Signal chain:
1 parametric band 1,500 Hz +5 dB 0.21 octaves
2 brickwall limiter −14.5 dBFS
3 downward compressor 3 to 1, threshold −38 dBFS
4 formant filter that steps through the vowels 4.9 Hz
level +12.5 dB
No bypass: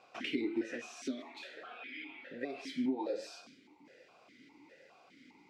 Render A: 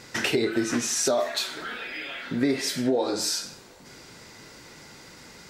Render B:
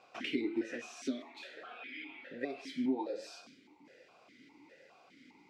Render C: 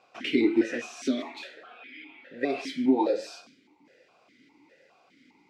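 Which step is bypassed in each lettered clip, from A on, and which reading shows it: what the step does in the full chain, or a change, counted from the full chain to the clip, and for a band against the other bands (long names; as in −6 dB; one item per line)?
4, 8 kHz band +13.0 dB
2, change in momentary loudness spread −9 LU
3, average gain reduction 6.5 dB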